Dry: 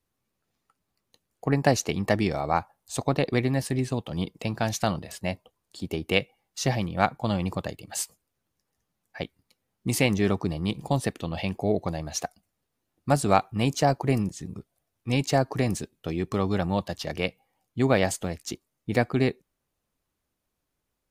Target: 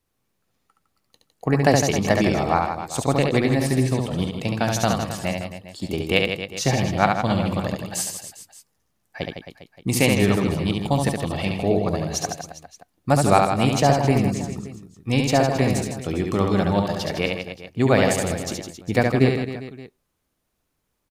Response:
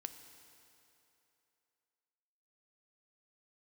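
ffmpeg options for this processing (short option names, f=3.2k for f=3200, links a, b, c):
-af "aecho=1:1:70|157.5|266.9|403.6|574.5:0.631|0.398|0.251|0.158|0.1,volume=3.5dB"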